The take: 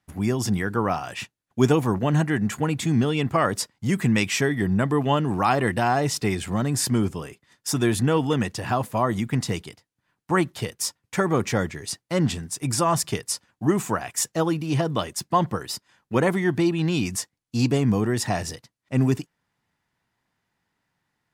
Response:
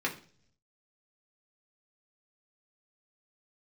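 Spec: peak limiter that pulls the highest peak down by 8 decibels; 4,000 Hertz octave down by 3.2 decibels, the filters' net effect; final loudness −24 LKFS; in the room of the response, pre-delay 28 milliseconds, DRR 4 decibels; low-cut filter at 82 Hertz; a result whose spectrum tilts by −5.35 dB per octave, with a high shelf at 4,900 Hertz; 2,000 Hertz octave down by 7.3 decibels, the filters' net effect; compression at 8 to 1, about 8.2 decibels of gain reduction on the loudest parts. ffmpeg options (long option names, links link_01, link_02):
-filter_complex "[0:a]highpass=82,equalizer=frequency=2000:width_type=o:gain=-9,equalizer=frequency=4000:width_type=o:gain=-6.5,highshelf=frequency=4900:gain=7,acompressor=threshold=-22dB:ratio=8,alimiter=limit=-19.5dB:level=0:latency=1,asplit=2[link_01][link_02];[1:a]atrim=start_sample=2205,adelay=28[link_03];[link_02][link_03]afir=irnorm=-1:irlink=0,volume=-11.5dB[link_04];[link_01][link_04]amix=inputs=2:normalize=0,volume=5dB"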